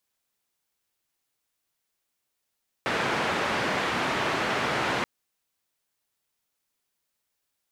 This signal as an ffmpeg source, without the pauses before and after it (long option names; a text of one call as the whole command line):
ffmpeg -f lavfi -i "anoisesrc=color=white:duration=2.18:sample_rate=44100:seed=1,highpass=frequency=120,lowpass=frequency=1800,volume=-11.5dB" out.wav